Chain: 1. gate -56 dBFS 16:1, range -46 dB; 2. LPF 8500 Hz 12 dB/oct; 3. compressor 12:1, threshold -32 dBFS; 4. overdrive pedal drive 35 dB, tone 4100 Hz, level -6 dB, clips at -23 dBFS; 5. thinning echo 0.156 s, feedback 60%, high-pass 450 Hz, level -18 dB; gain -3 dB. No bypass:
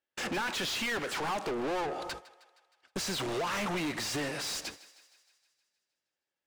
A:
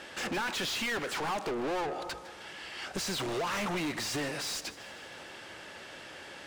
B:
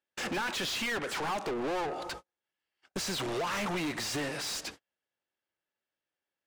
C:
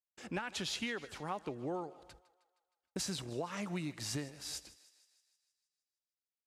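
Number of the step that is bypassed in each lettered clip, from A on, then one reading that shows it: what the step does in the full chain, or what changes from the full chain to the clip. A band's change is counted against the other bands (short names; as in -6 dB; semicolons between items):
1, momentary loudness spread change +4 LU; 5, echo-to-direct -17.0 dB to none; 4, momentary loudness spread change -2 LU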